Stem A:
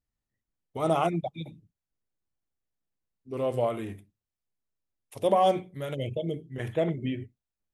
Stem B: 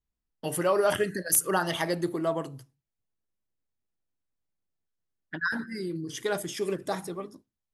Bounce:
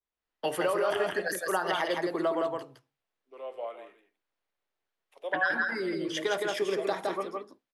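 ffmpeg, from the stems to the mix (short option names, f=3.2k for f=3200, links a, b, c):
-filter_complex "[0:a]highpass=410,volume=-14dB,asplit=2[a][b];[b]volume=-12dB[c];[1:a]adynamicequalizer=threshold=0.00631:dfrequency=2900:dqfactor=0.86:tfrequency=2900:tqfactor=0.86:attack=5:release=100:ratio=0.375:range=2:mode=cutabove:tftype=bell,alimiter=limit=-21.5dB:level=0:latency=1:release=443,volume=2.5dB,asplit=2[d][e];[e]volume=-4dB[f];[c][f]amix=inputs=2:normalize=0,aecho=0:1:164:1[g];[a][d][g]amix=inputs=3:normalize=0,acrossover=split=310|3000[h][i][j];[i]acompressor=threshold=-30dB:ratio=6[k];[h][k][j]amix=inputs=3:normalize=0,acrossover=split=380 4100:gain=0.112 1 0.158[l][m][n];[l][m][n]amix=inputs=3:normalize=0,dynaudnorm=f=100:g=5:m=6dB"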